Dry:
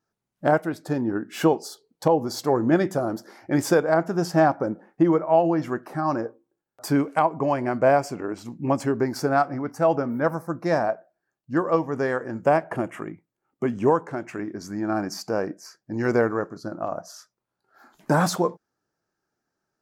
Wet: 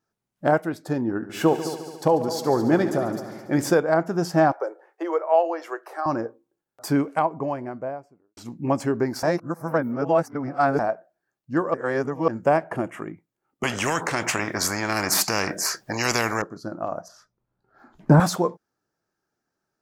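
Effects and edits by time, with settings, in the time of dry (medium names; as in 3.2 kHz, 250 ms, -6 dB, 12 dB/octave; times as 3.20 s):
1.08–3.70 s: multi-head delay 71 ms, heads all three, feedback 52%, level -15.5 dB
4.52–6.06 s: steep high-pass 390 Hz 48 dB/octave
6.87–8.37 s: studio fade out
9.23–10.79 s: reverse
11.74–12.28 s: reverse
13.63–16.42 s: spectrum-flattening compressor 4:1
17.08–18.20 s: RIAA curve playback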